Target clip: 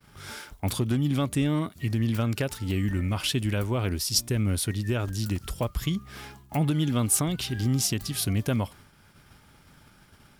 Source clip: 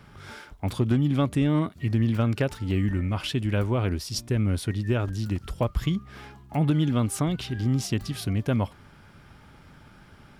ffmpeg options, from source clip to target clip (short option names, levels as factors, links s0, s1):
-af "alimiter=limit=0.141:level=0:latency=1:release=362,crystalizer=i=2.5:c=0,agate=range=0.0224:threshold=0.00631:ratio=3:detection=peak"